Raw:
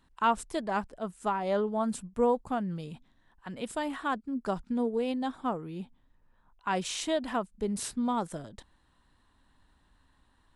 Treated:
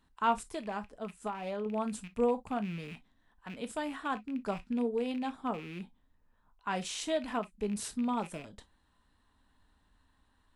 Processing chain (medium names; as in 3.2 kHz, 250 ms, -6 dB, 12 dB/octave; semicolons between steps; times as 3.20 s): rattle on loud lows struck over -44 dBFS, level -34 dBFS; 0.42–1.66 s: compression, threshold -30 dBFS, peak gain reduction 6.5 dB; gated-style reverb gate 80 ms falling, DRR 9 dB; trim -4 dB